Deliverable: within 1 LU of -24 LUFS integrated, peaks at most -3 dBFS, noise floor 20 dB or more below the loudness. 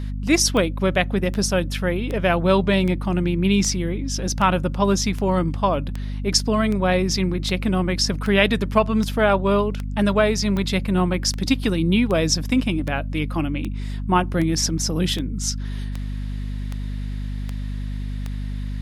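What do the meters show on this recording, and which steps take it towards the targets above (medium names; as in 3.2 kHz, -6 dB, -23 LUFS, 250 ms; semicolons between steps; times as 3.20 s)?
clicks found 24; hum 50 Hz; highest harmonic 250 Hz; hum level -25 dBFS; loudness -21.5 LUFS; peak level -3.0 dBFS; loudness target -24.0 LUFS
-> de-click; hum notches 50/100/150/200/250 Hz; trim -2.5 dB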